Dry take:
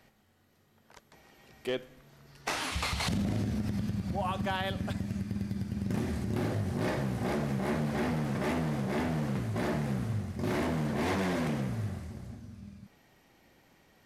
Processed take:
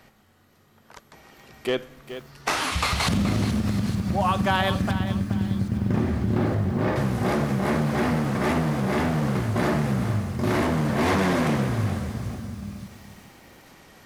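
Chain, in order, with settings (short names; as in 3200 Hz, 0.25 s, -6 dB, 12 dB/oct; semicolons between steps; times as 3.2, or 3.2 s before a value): bell 1200 Hz +4 dB 0.56 oct; vocal rider within 4 dB 2 s; 4.91–6.96 tape spacing loss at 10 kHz 21 dB; on a send: thin delay 0.865 s, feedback 64%, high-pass 4700 Hz, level -14.5 dB; on the sum: lo-fi delay 0.425 s, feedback 35%, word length 9-bit, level -11 dB; gain +8 dB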